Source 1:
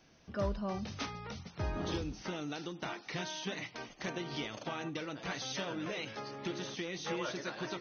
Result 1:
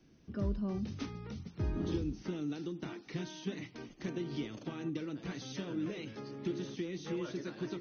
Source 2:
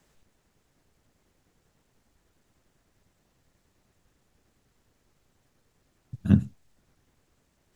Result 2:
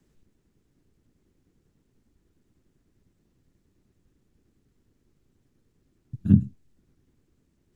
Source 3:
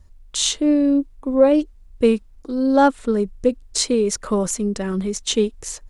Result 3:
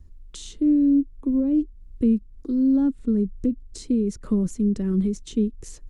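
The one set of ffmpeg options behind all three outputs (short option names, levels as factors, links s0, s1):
-filter_complex "[0:a]acrossover=split=260[s0][s1];[s1]acompressor=threshold=0.0224:ratio=5[s2];[s0][s2]amix=inputs=2:normalize=0,lowshelf=f=470:t=q:w=1.5:g=9.5,volume=0.422"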